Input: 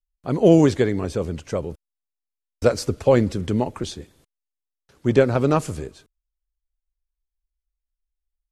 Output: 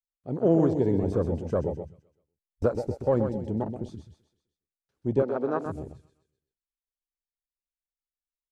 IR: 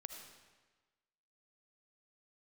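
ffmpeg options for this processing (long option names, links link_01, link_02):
-filter_complex "[0:a]asettb=1/sr,asplit=3[link_01][link_02][link_03];[link_01]atrim=end=0.864[link_04];[link_02]atrim=start=0.86:end=2.66,asetpts=PTS-STARTPTS,afade=type=in:duration=0.004:curve=qsin,afade=type=out:start_time=1.796:duration=0.004:curve=qsin,acontrast=81[link_05];[link_03]atrim=start=2.656[link_06];[link_04][link_05]acrossfade=duration=0.004:curve1=hsin:curve2=qsin[link_07];[link_07][link_06]acrossfade=duration=0.004:curve1=qsin:curve2=hsin,aecho=1:1:128|256|384|512|640:0.447|0.201|0.0905|0.0407|0.0183,afwtdn=0.0708,asettb=1/sr,asplit=3[link_08][link_09][link_10];[link_08]atrim=end=5.224[link_11];[link_09]atrim=start=5.22:end=5.66,asetpts=PTS-STARTPTS,afade=type=in:duration=0.004:curve=qsin,afade=type=out:start_time=0.436:duration=0.004:curve=qsin,acrossover=split=230 6800:gain=0.0794 1 0.2[link_12][link_13][link_14];[link_12][link_13][link_14]amix=inputs=3:normalize=0[link_15];[link_10]atrim=start=5.656[link_16];[link_11][link_15]acrossfade=duration=0.004:curve1=hsin:curve2=qsin[link_17];[link_17][link_16]acrossfade=duration=0.004:curve1=qsin:curve2=hsin,volume=-8dB"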